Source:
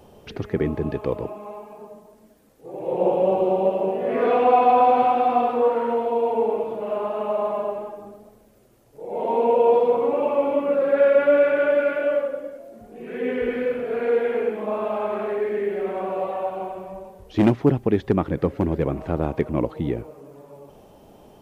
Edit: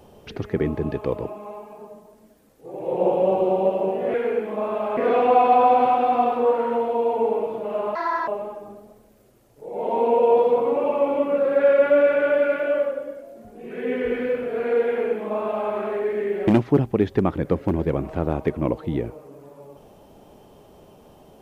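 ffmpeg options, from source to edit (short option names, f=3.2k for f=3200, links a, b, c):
-filter_complex "[0:a]asplit=6[a][b][c][d][e][f];[a]atrim=end=4.142[g];[b]atrim=start=14.238:end=15.072[h];[c]atrim=start=4.138:end=7.124[i];[d]atrim=start=7.12:end=7.64,asetpts=PTS-STARTPTS,asetrate=70560,aresample=44100,atrim=end_sample=14332,asetpts=PTS-STARTPTS[j];[e]atrim=start=7.636:end=15.842[k];[f]atrim=start=17.398[l];[g][h]acrossfade=d=0.004:c1=hsin:c2=hsin[m];[m][i]acrossfade=d=0.004:c1=hsin:c2=hsin[n];[n][j]acrossfade=d=0.004:c1=hsin:c2=hsin[o];[o][k]acrossfade=d=0.004:c1=hsin:c2=hsin[p];[p][l]acrossfade=d=0.004:c1=hsin:c2=hsin"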